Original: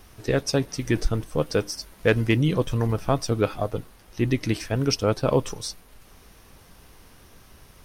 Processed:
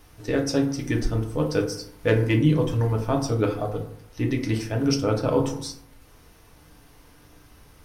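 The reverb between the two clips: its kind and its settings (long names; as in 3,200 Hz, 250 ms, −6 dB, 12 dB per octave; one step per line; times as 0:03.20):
feedback delay network reverb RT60 0.66 s, low-frequency decay 1.2×, high-frequency decay 0.45×, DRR 1 dB
level −4 dB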